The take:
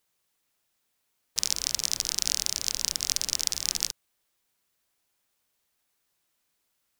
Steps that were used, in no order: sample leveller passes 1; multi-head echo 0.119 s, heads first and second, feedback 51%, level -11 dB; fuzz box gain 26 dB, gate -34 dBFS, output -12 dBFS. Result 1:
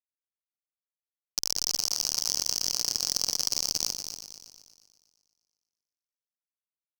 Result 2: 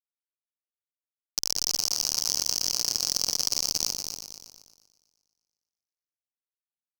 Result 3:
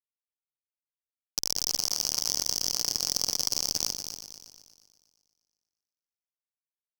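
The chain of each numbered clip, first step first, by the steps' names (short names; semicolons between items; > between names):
fuzz box > sample leveller > multi-head echo; fuzz box > multi-head echo > sample leveller; sample leveller > fuzz box > multi-head echo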